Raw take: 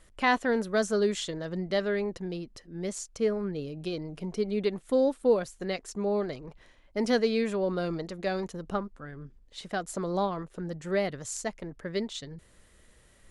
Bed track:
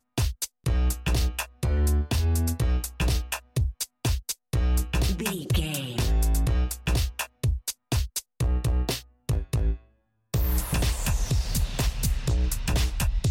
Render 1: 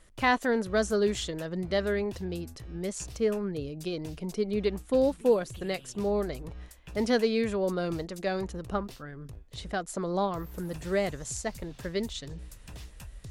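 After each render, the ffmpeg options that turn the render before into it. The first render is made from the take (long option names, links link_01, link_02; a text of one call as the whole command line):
ffmpeg -i in.wav -i bed.wav -filter_complex "[1:a]volume=-20dB[link_01];[0:a][link_01]amix=inputs=2:normalize=0" out.wav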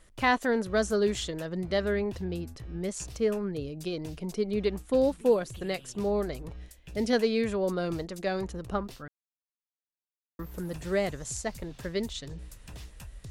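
ffmpeg -i in.wav -filter_complex "[0:a]asettb=1/sr,asplit=3[link_01][link_02][link_03];[link_01]atrim=end=1.844[link_04];[link_02]atrim=start=1.84:end=2.89,asetpts=PTS-STARTPTS,afade=type=in:duration=0.004:curve=qsin,afade=type=out:start_time=1.046:duration=0.004:curve=qsin,bass=frequency=250:gain=2,treble=frequency=4000:gain=-4[link_05];[link_03]atrim=start=2.886[link_06];[link_04][link_05]acrossfade=duration=0.004:curve1=hsin:curve2=qsin[link_07];[link_07][link_06]acrossfade=duration=0.004:curve1=qsin:curve2=hsin,asettb=1/sr,asplit=3[link_08][link_09][link_10];[link_08]atrim=end=6.564[link_11];[link_09]atrim=start=6.56:end=7.13,asetpts=PTS-STARTPTS,afade=type=in:duration=0.004:curve=qsin,afade=type=out:start_time=0.566:duration=0.004:curve=qsin,equalizer=frequency=1100:width=1.4:gain=-10[link_12];[link_10]atrim=start=7.126[link_13];[link_11][link_12]acrossfade=duration=0.004:curve1=hsin:curve2=qsin[link_14];[link_14][link_13]acrossfade=duration=0.004:curve1=qsin:curve2=hsin,asplit=3[link_15][link_16][link_17];[link_15]atrim=end=9.08,asetpts=PTS-STARTPTS,afade=type=out:start_time=9.076:duration=0.004:curve=hsin[link_18];[link_16]atrim=start=9.08:end=10.39,asetpts=PTS-STARTPTS,volume=0[link_19];[link_17]atrim=start=10.39,asetpts=PTS-STARTPTS,afade=type=in:duration=0.004:curve=hsin[link_20];[link_18][link_19][link_20]concat=n=3:v=0:a=1" out.wav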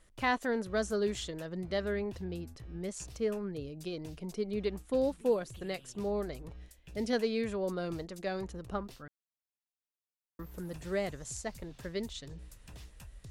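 ffmpeg -i in.wav -af "volume=-5.5dB" out.wav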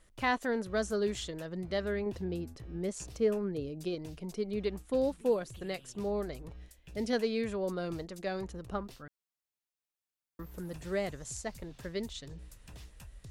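ffmpeg -i in.wav -filter_complex "[0:a]asettb=1/sr,asplit=3[link_01][link_02][link_03];[link_01]atrim=end=2.064[link_04];[link_02]atrim=start=2.06:end=3.95,asetpts=PTS-STARTPTS,afade=type=in:duration=0.004:curve=qsin,afade=type=out:start_time=1.886:duration=0.004:curve=qsin,equalizer=frequency=350:width_type=o:width=2.1:gain=4.5[link_05];[link_03]atrim=start=3.946[link_06];[link_04][link_05]acrossfade=duration=0.004:curve1=hsin:curve2=qsin[link_07];[link_07][link_06]acrossfade=duration=0.004:curve1=qsin:curve2=hsin" out.wav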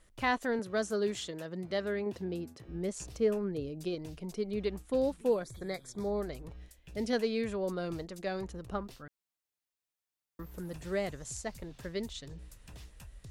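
ffmpeg -i in.wav -filter_complex "[0:a]asettb=1/sr,asplit=3[link_01][link_02][link_03];[link_01]atrim=end=0.594[link_04];[link_02]atrim=start=0.59:end=2.69,asetpts=PTS-STARTPTS,afade=type=in:duration=0.004:curve=qsin,afade=type=out:start_time=2.096:duration=0.004:curve=qsin,highpass=140[link_05];[link_03]atrim=start=2.686[link_06];[link_04][link_05]acrossfade=duration=0.004:curve1=hsin:curve2=qsin[link_07];[link_07][link_06]acrossfade=duration=0.004:curve1=qsin:curve2=hsin,asplit=3[link_08][link_09][link_10];[link_08]afade=type=out:start_time=5.41:duration=0.02[link_11];[link_09]asuperstop=centerf=2800:order=8:qfactor=3.1,afade=type=in:start_time=5.41:duration=0.02,afade=type=out:start_time=6.2:duration=0.02[link_12];[link_10]afade=type=in:start_time=6.2:duration=0.02[link_13];[link_11][link_12][link_13]amix=inputs=3:normalize=0" out.wav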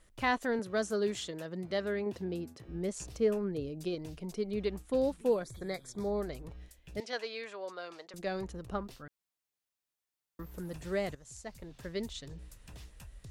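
ffmpeg -i in.wav -filter_complex "[0:a]asettb=1/sr,asplit=3[link_01][link_02][link_03];[link_01]atrim=end=7.004[link_04];[link_02]atrim=start=7:end=8.14,asetpts=PTS-STARTPTS,afade=type=in:duration=0.004:curve=qsin,afade=type=out:start_time=1.136:duration=0.004:curve=qsin,highpass=720,lowpass=6000[link_05];[link_03]atrim=start=8.136[link_06];[link_04][link_05]acrossfade=duration=0.004:curve1=hsin:curve2=qsin[link_07];[link_07][link_06]acrossfade=duration=0.004:curve1=qsin:curve2=hsin,asplit=2[link_08][link_09];[link_08]atrim=end=11.15,asetpts=PTS-STARTPTS,afade=type=out:start_time=11.146:duration=0.004:curve=hsin:silence=0.223872[link_10];[link_09]atrim=start=11.15,asetpts=PTS-STARTPTS,afade=type=in:duration=0.86:silence=0.223872[link_11];[link_10][link_11]concat=n=2:v=0:a=1" out.wav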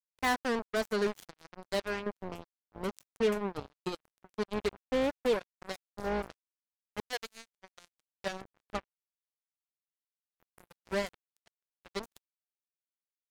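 ffmpeg -i in.wav -af "acrusher=bits=4:mix=0:aa=0.5" out.wav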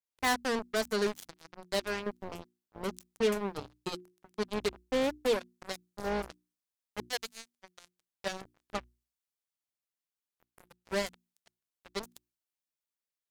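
ffmpeg -i in.wav -af "bandreject=frequency=60:width_type=h:width=6,bandreject=frequency=120:width_type=h:width=6,bandreject=frequency=180:width_type=h:width=6,bandreject=frequency=240:width_type=h:width=6,bandreject=frequency=300:width_type=h:width=6,bandreject=frequency=360:width_type=h:width=6,adynamicequalizer=threshold=0.00282:dfrequency=3300:dqfactor=0.7:tfrequency=3300:tqfactor=0.7:attack=5:release=100:ratio=0.375:range=3:mode=boostabove:tftype=highshelf" out.wav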